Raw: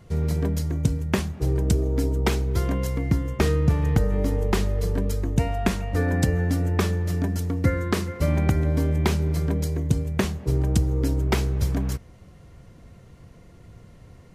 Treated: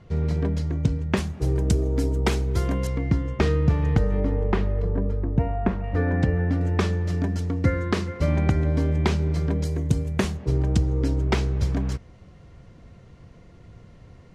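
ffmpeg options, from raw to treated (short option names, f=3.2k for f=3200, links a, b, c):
-af "asetnsamples=n=441:p=0,asendcmd='1.17 lowpass f 10000;2.87 lowpass f 4800;4.2 lowpass f 2200;4.82 lowpass f 1300;5.84 lowpass f 2500;6.61 lowpass f 5800;9.65 lowpass f 10000;10.37 lowpass f 5900',lowpass=4.4k"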